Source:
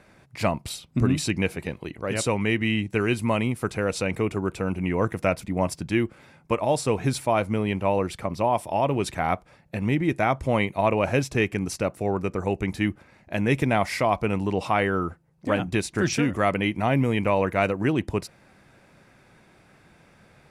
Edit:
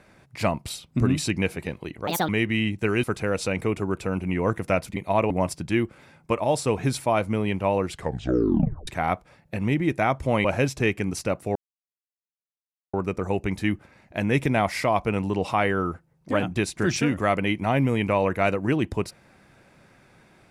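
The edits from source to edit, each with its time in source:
2.07–2.40 s: speed 154%
3.15–3.58 s: delete
8.09 s: tape stop 0.99 s
10.65–10.99 s: move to 5.51 s
12.10 s: insert silence 1.38 s

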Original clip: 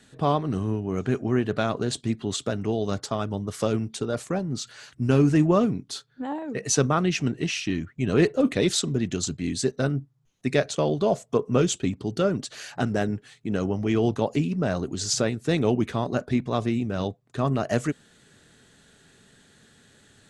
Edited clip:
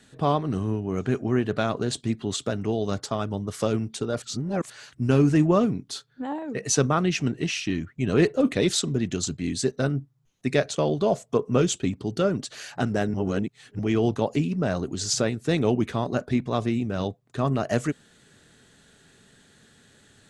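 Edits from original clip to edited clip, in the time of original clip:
4.22–4.70 s: reverse
13.14–13.79 s: reverse

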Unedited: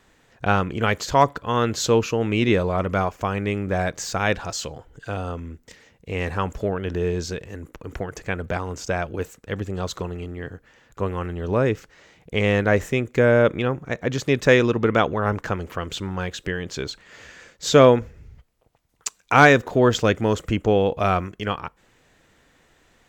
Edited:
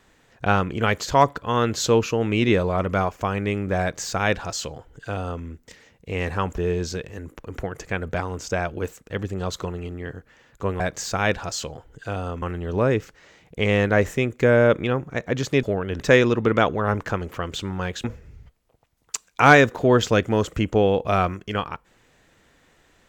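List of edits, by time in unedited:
3.81–5.43 s: copy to 11.17 s
6.58–6.95 s: move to 14.38 s
16.42–17.96 s: delete

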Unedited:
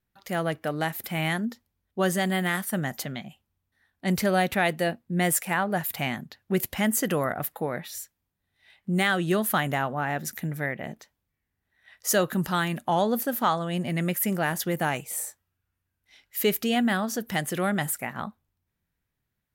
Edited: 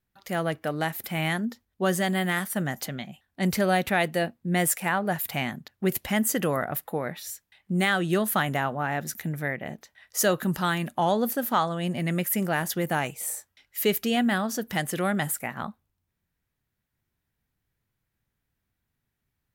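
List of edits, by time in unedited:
shrink pauses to 15%

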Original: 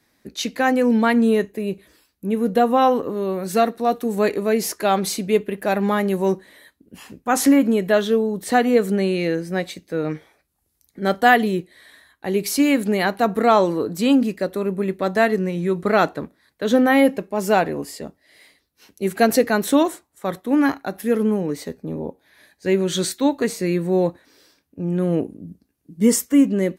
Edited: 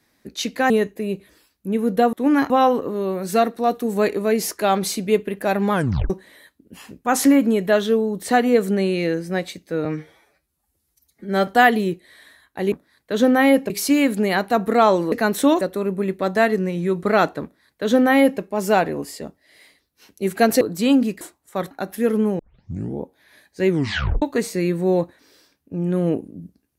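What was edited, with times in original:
0.70–1.28 s: delete
5.94 s: tape stop 0.37 s
10.06–11.14 s: stretch 1.5×
13.81–14.41 s: swap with 19.41–19.90 s
16.23–17.21 s: copy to 12.39 s
20.40–20.77 s: move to 2.71 s
21.45 s: tape start 0.63 s
22.74 s: tape stop 0.54 s

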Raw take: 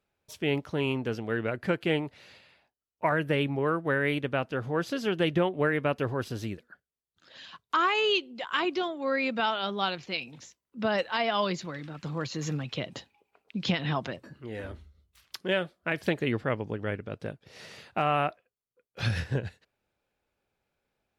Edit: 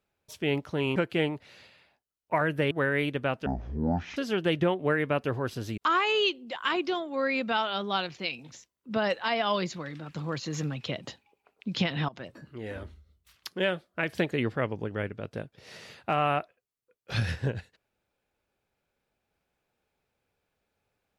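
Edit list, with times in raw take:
0.96–1.67 s: delete
3.42–3.80 s: delete
4.55–4.91 s: speed 51%
6.52–7.66 s: delete
13.97–14.23 s: fade in, from -23 dB

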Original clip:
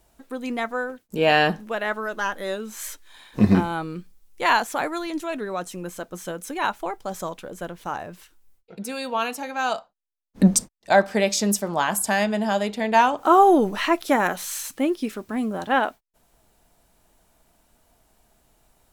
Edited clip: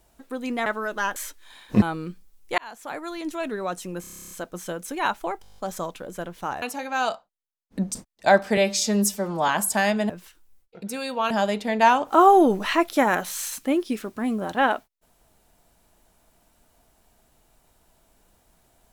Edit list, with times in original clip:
0.66–1.87 s: delete
2.37–2.80 s: delete
3.46–3.71 s: delete
4.47–5.35 s: fade in
5.90 s: stutter 0.03 s, 11 plays
7.01 s: stutter 0.02 s, 9 plays
8.05–9.26 s: move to 12.43 s
9.76–10.59 s: fade out quadratic, to -11.5 dB
11.21–11.82 s: stretch 1.5×

